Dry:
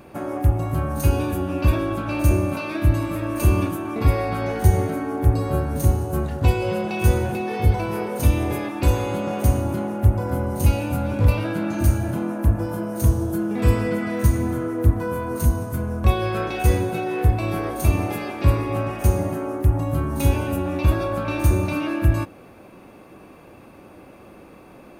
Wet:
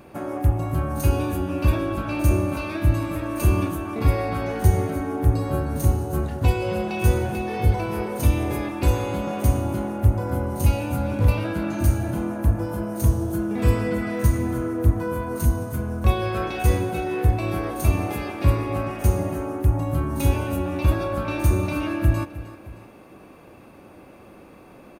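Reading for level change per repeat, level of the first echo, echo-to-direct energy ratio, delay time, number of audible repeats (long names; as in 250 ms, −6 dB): −5.0 dB, −16.5 dB, −15.5 dB, 309 ms, 2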